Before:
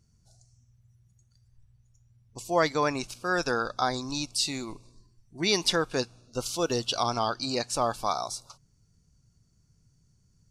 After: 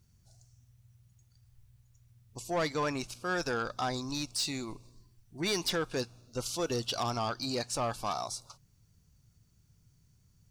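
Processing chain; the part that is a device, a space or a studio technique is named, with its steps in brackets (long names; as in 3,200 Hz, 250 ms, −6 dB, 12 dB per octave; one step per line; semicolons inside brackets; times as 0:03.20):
open-reel tape (soft clipping −22.5 dBFS, distortion −11 dB; parametric band 89 Hz +4 dB 1.09 octaves; white noise bed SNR 43 dB)
level −2.5 dB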